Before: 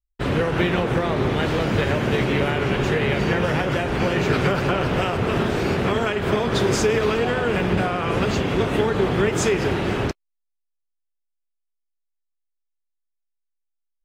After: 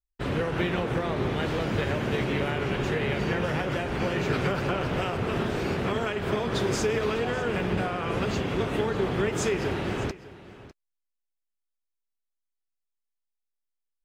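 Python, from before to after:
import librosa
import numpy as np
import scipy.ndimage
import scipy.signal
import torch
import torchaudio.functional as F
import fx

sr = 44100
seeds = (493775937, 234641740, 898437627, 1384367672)

y = x + 10.0 ** (-17.5 / 20.0) * np.pad(x, (int(601 * sr / 1000.0), 0))[:len(x)]
y = y * librosa.db_to_amplitude(-6.5)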